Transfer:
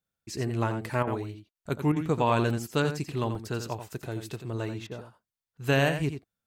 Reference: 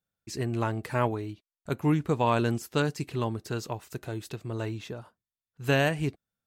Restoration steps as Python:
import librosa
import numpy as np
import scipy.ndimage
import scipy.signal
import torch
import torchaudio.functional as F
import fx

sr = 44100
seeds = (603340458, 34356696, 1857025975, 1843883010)

y = fx.fix_interpolate(x, sr, at_s=(2.5, 3.35), length_ms=2.4)
y = fx.fix_interpolate(y, sr, at_s=(1.03, 1.51, 1.92, 4.87), length_ms=41.0)
y = fx.fix_echo_inverse(y, sr, delay_ms=87, level_db=-9.0)